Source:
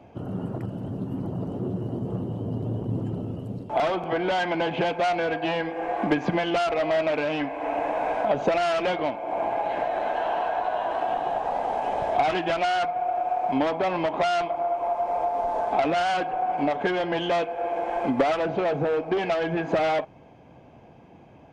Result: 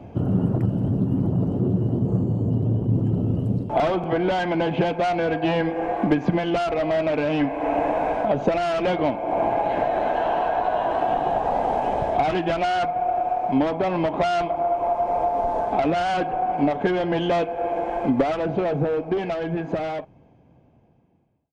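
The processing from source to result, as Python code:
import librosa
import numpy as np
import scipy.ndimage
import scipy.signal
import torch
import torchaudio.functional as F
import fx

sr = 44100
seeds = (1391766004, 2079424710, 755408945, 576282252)

y = fx.fade_out_tail(x, sr, length_s=6.25)
y = fx.low_shelf(y, sr, hz=390.0, db=11.0)
y = fx.rider(y, sr, range_db=4, speed_s=0.5)
y = fx.resample_linear(y, sr, factor=6, at=(2.07, 2.5))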